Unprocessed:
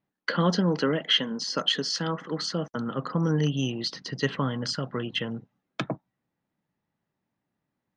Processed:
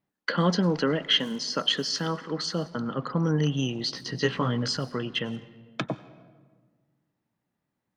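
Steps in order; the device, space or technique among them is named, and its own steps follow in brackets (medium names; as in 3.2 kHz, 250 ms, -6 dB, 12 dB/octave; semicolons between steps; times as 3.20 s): 3.86–4.77 s: doubling 17 ms -3 dB; saturated reverb return (on a send at -14 dB: reverberation RT60 1.4 s, pre-delay 89 ms + saturation -29 dBFS, distortion -7 dB)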